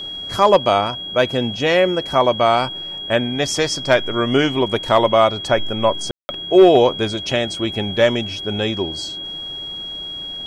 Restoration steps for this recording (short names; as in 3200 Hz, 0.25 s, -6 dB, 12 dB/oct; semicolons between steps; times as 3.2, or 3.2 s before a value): notch 3300 Hz, Q 30; room tone fill 6.11–6.29